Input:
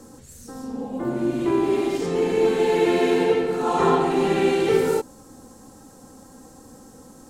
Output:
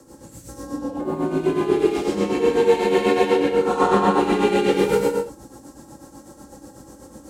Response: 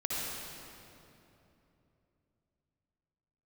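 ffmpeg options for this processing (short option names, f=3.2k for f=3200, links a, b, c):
-filter_complex "[0:a]afreqshift=29[a];[1:a]atrim=start_sample=2205,afade=t=out:st=0.4:d=0.01,atrim=end_sample=18081,asetrate=52920,aresample=44100[b];[a][b]afir=irnorm=-1:irlink=0,tremolo=f=8.1:d=0.59,volume=1.5dB"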